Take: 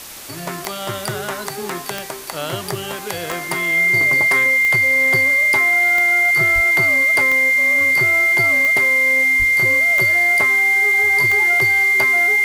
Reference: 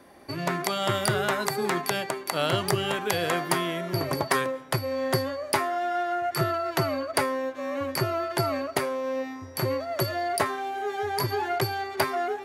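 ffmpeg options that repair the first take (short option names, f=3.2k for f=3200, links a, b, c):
-filter_complex "[0:a]adeclick=t=4,bandreject=f=2.1k:w=30,asplit=3[a][b][c];[a]afade=t=out:st=6.54:d=0.02[d];[b]highpass=f=140:w=0.5412,highpass=f=140:w=1.3066,afade=t=in:st=6.54:d=0.02,afade=t=out:st=6.66:d=0.02[e];[c]afade=t=in:st=6.66:d=0.02[f];[d][e][f]amix=inputs=3:normalize=0,asplit=3[g][h][i];[g]afade=t=out:st=9.38:d=0.02[j];[h]highpass=f=140:w=0.5412,highpass=f=140:w=1.3066,afade=t=in:st=9.38:d=0.02,afade=t=out:st=9.5:d=0.02[k];[i]afade=t=in:st=9.5:d=0.02[l];[j][k][l]amix=inputs=3:normalize=0,afwtdn=0.02"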